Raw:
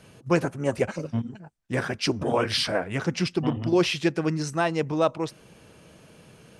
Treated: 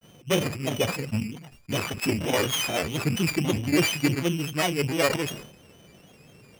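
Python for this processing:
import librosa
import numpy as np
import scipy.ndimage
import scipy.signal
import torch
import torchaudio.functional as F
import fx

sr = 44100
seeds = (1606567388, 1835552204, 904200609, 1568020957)

y = np.r_[np.sort(x[:len(x) // 16 * 16].reshape(-1, 16), axis=1).ravel(), x[len(x) // 16 * 16:]]
y = fx.granulator(y, sr, seeds[0], grain_ms=100.0, per_s=20.0, spray_ms=17.0, spread_st=3)
y = fx.sustainer(y, sr, db_per_s=83.0)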